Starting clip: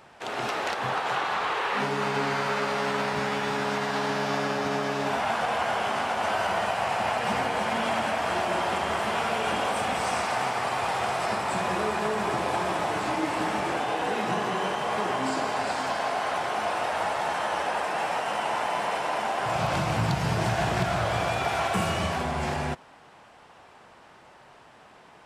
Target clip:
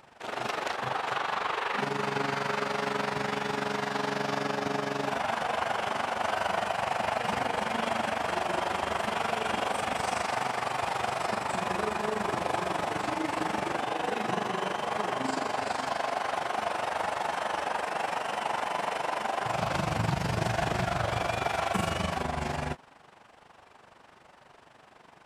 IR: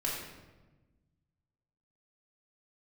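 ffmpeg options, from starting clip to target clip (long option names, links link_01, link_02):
-af "tremolo=f=24:d=0.71"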